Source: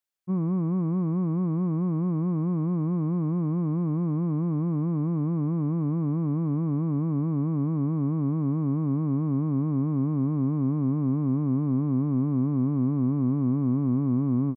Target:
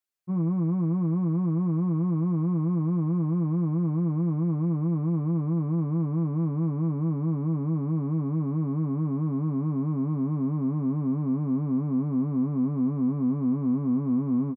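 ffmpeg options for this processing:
-filter_complex "[0:a]asplit=2[a][b];[b]adelay=12,volume=-4.5dB[c];[a][c]amix=inputs=2:normalize=0,volume=-2.5dB"

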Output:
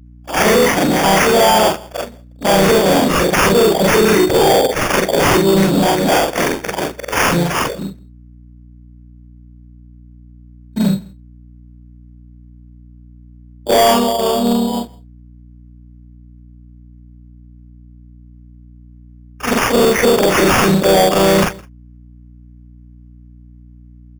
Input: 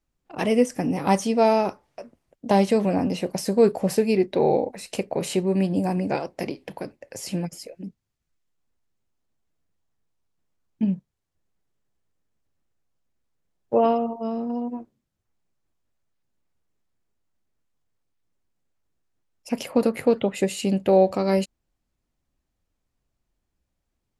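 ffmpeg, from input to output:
-filter_complex "[0:a]afftfilt=real='re':imag='-im':win_size=4096:overlap=0.75,aemphasis=mode=production:type=riaa,agate=range=-18dB:threshold=-57dB:ratio=16:detection=peak,lowpass=6.6k,acontrast=80,alimiter=limit=-13.5dB:level=0:latency=1:release=58,acontrast=76,asplit=2[a][b];[b]adelay=163.3,volume=-26dB,highshelf=f=4k:g=-3.67[c];[a][c]amix=inputs=2:normalize=0,asplit=2[d][e];[e]asetrate=37084,aresample=44100,atempo=1.18921,volume=-6dB[f];[d][f]amix=inputs=2:normalize=0,acrusher=samples=11:mix=1:aa=0.000001,asoftclip=type=tanh:threshold=-15dB,aeval=exprs='val(0)+0.00447*(sin(2*PI*60*n/s)+sin(2*PI*2*60*n/s)/2+sin(2*PI*3*60*n/s)/3+sin(2*PI*4*60*n/s)/4+sin(2*PI*5*60*n/s)/5)':c=same,volume=8dB"

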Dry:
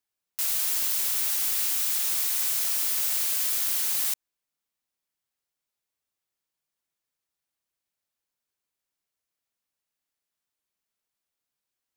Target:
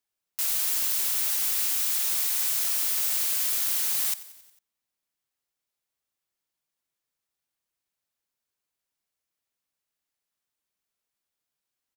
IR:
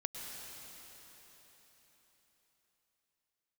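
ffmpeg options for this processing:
-filter_complex "[0:a]asplit=6[a][b][c][d][e][f];[b]adelay=90,afreqshift=-45,volume=-17.5dB[g];[c]adelay=180,afreqshift=-90,volume=-22.1dB[h];[d]adelay=270,afreqshift=-135,volume=-26.7dB[i];[e]adelay=360,afreqshift=-180,volume=-31.2dB[j];[f]adelay=450,afreqshift=-225,volume=-35.8dB[k];[a][g][h][i][j][k]amix=inputs=6:normalize=0"

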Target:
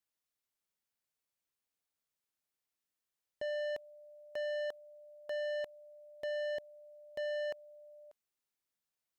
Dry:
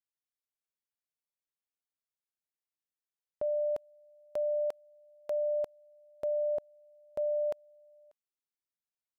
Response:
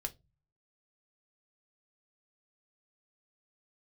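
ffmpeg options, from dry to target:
-af "asoftclip=type=tanh:threshold=-39.5dB,volume=4dB"

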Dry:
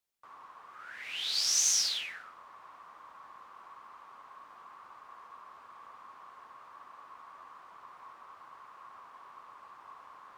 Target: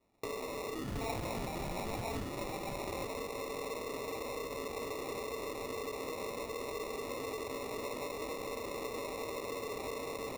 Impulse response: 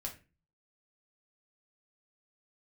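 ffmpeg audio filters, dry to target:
-filter_complex "[0:a]equalizer=f=530:t=o:w=0.27:g=-12,aecho=1:1:1044:0.15[a];[1:a]atrim=start_sample=2205[b];[a][b]afir=irnorm=-1:irlink=0,asplit=2[c][d];[d]highpass=f=720:p=1,volume=22dB,asoftclip=type=tanh:threshold=-24.5dB[e];[c][e]amix=inputs=2:normalize=0,lowpass=f=1.2k:p=1,volume=-6dB,acompressor=threshold=-49dB:ratio=6,asettb=1/sr,asplit=3[f][g][h];[f]atrim=end=0.884[i];[g]atrim=start=0.88:end=3.06,asetpts=PTS-STARTPTS,afade=t=in:d=0.004:c=qsin,afade=t=out:st=2.176:d=0.004:c=qsin,aecho=1:1:4.9:0.61,atrim=end_sample=96138[j];[h]atrim=start=3.056[k];[i][j]acrossfade=d=0.004:c1=hsin:c2=qsin[l];[l][k]acrossfade=d=0.004:c1=qsin:c2=hsin,acrusher=samples=28:mix=1:aa=0.000001,volume=11dB"

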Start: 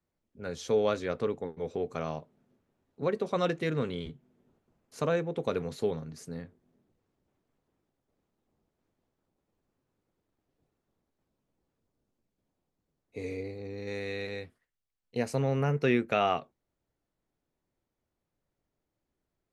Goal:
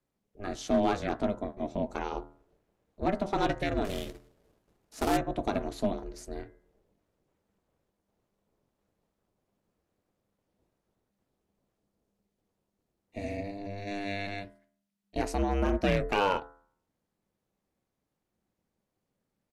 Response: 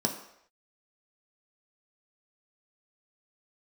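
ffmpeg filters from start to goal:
-filter_complex "[0:a]bandreject=f=80.22:t=h:w=4,bandreject=f=160.44:t=h:w=4,bandreject=f=240.66:t=h:w=4,bandreject=f=320.88:t=h:w=4,bandreject=f=401.1:t=h:w=4,bandreject=f=481.32:t=h:w=4,bandreject=f=561.54:t=h:w=4,bandreject=f=641.76:t=h:w=4,bandreject=f=721.98:t=h:w=4,bandreject=f=802.2:t=h:w=4,bandreject=f=882.42:t=h:w=4,bandreject=f=962.64:t=h:w=4,bandreject=f=1.04286k:t=h:w=4,bandreject=f=1.12308k:t=h:w=4,bandreject=f=1.2033k:t=h:w=4,bandreject=f=1.28352k:t=h:w=4,bandreject=f=1.36374k:t=h:w=4,bandreject=f=1.44396k:t=h:w=4,bandreject=f=1.52418k:t=h:w=4,bandreject=f=1.6044k:t=h:w=4,bandreject=f=1.68462k:t=h:w=4,bandreject=f=1.76484k:t=h:w=4,bandreject=f=1.84506k:t=h:w=4,aeval=exprs='val(0)*sin(2*PI*200*n/s)':c=same,asplit=2[a][b];[b]aeval=exprs='0.0708*(abs(mod(val(0)/0.0708+3,4)-2)-1)':c=same,volume=-4dB[c];[a][c]amix=inputs=2:normalize=0,asplit=3[d][e][f];[d]afade=t=out:st=3.84:d=0.02[g];[e]acrusher=bits=2:mode=log:mix=0:aa=0.000001,afade=t=in:st=3.84:d=0.02,afade=t=out:st=5.16:d=0.02[h];[f]afade=t=in:st=5.16:d=0.02[i];[g][h][i]amix=inputs=3:normalize=0,aresample=32000,aresample=44100"

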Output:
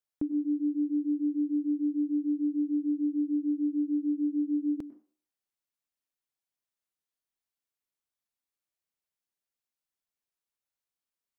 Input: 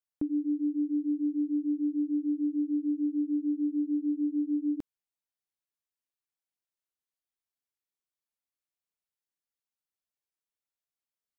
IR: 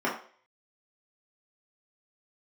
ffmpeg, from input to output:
-filter_complex "[0:a]asplit=2[a][b];[1:a]atrim=start_sample=2205,adelay=99[c];[b][c]afir=irnorm=-1:irlink=0,volume=-28dB[d];[a][d]amix=inputs=2:normalize=0"

